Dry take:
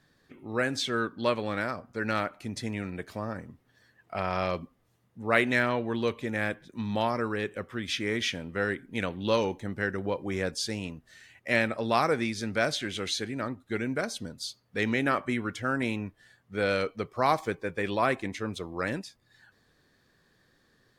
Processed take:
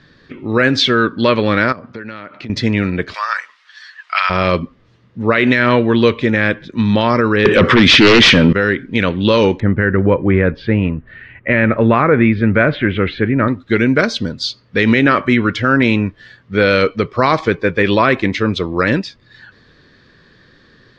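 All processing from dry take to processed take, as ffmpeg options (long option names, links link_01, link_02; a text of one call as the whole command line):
ffmpeg -i in.wav -filter_complex "[0:a]asettb=1/sr,asplit=3[link_01][link_02][link_03];[link_01]atrim=end=1.724[link_04];[link_02]atrim=start=1.72:end=2.5,asetpts=PTS-STARTPTS,afade=type=in:duration=0.004:curve=qsin,afade=type=out:start_time=0.776:duration=0.004:curve=qsin,acompressor=threshold=-42dB:ratio=20:attack=3.2:release=140:knee=1:detection=peak,highpass=110,lowpass=4500[link_05];[link_03]atrim=start=2.496[link_06];[link_04][link_05]acrossfade=duration=0.004:curve1=hsin:curve2=qsin[link_07];[link_07][link_06]acrossfade=duration=0.004:curve1=qsin:curve2=hsin,asettb=1/sr,asplit=3[link_08][link_09][link_10];[link_08]atrim=end=3.144[link_11];[link_09]atrim=start=3.14:end=4.3,asetpts=PTS-STARTPTS,afade=type=in:duration=0.004:curve=qsin,afade=type=out:start_time=1.156:duration=0.004:curve=qsin,highpass=frequency=1100:width=0.5412,highpass=frequency=1100:width=1.3066,highshelf=frequency=3800:gain=8.5,acontrast=56[link_12];[link_10]atrim=start=4.296[link_13];[link_11][link_12]acrossfade=duration=0.004:curve1=hsin:curve2=qsin[link_14];[link_14][link_13]acrossfade=duration=0.004:curve1=qsin:curve2=hsin,asettb=1/sr,asplit=3[link_15][link_16][link_17];[link_15]atrim=end=7.454[link_18];[link_16]atrim=start=7.45:end=8.53,asetpts=PTS-STARTPTS,afade=type=in:duration=0.004:curve=qsin,afade=type=out:start_time=1.076:duration=0.004:curve=qsin,highpass=110,acontrast=86,aeval=exprs='0.316*sin(PI/2*3.55*val(0)/0.316)':channel_layout=same[link_19];[link_17]atrim=start=8.526[link_20];[link_18][link_19]acrossfade=duration=0.004:curve1=hsin:curve2=qsin[link_21];[link_21][link_20]acrossfade=duration=0.004:curve1=qsin:curve2=hsin,asettb=1/sr,asplit=3[link_22][link_23][link_24];[link_22]atrim=end=9.604[link_25];[link_23]atrim=start=9.6:end=13.48,asetpts=PTS-STARTPTS,afade=type=in:duration=0.004:curve=qsin,afade=type=out:start_time=3.876:duration=0.004:curve=qsin,lowpass=frequency=2300:width=0.5412,lowpass=frequency=2300:width=1.3066,lowshelf=frequency=120:gain=8[link_26];[link_24]atrim=start=13.476[link_27];[link_25][link_26]acrossfade=duration=0.004:curve1=hsin:curve2=qsin[link_28];[link_28][link_27]acrossfade=duration=0.004:curve1=qsin:curve2=hsin,lowpass=frequency=4800:width=0.5412,lowpass=frequency=4800:width=1.3066,equalizer=frequency=760:width_type=o:width=0.53:gain=-8.5,alimiter=level_in=19.5dB:limit=-1dB:release=50:level=0:latency=1,volume=-1dB" out.wav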